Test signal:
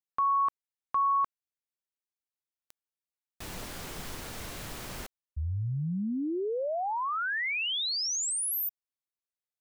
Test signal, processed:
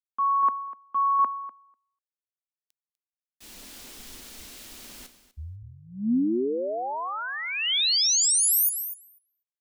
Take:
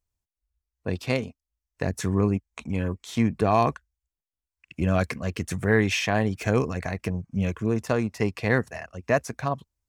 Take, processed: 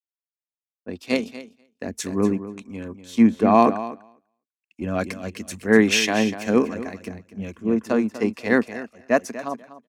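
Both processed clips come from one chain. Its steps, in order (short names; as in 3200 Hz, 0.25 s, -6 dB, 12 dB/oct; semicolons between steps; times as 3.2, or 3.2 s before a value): resonant low shelf 180 Hz -8.5 dB, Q 3; feedback echo 0.247 s, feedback 21%, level -8.5 dB; three-band expander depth 100%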